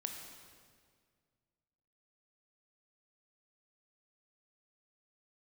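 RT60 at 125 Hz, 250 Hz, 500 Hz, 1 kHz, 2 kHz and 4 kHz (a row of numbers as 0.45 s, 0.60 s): 2.5 s, 2.2 s, 2.1 s, 1.8 s, 1.7 s, 1.6 s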